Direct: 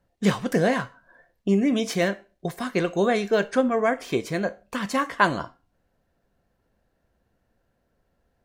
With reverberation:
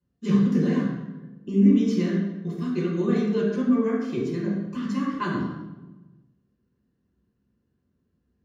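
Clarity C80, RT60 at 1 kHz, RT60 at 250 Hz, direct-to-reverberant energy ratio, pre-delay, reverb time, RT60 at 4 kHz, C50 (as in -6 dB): 4.5 dB, 0.95 s, 1.5 s, -6.5 dB, 3 ms, 1.2 s, 0.80 s, 2.0 dB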